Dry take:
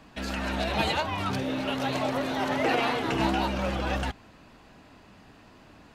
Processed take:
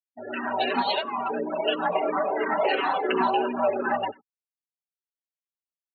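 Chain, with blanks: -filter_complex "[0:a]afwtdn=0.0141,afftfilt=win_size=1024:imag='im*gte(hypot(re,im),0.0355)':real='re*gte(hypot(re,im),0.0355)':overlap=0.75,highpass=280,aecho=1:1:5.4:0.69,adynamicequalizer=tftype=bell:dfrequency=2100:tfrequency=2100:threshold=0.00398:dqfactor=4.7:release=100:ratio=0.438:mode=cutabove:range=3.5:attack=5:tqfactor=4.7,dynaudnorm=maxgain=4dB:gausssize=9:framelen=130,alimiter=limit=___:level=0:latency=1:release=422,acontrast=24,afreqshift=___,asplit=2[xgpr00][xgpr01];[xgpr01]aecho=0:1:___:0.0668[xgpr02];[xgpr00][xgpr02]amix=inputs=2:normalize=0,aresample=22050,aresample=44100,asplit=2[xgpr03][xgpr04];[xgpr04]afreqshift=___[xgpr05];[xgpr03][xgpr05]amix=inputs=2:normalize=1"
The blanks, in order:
-15.5dB, 46, 93, -2.9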